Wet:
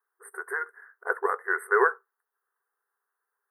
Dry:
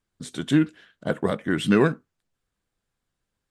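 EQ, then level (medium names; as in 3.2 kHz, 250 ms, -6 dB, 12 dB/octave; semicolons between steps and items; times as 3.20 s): brick-wall FIR high-pass 380 Hz; brick-wall FIR band-stop 2.2–8.1 kHz; static phaser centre 2.2 kHz, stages 6; +7.0 dB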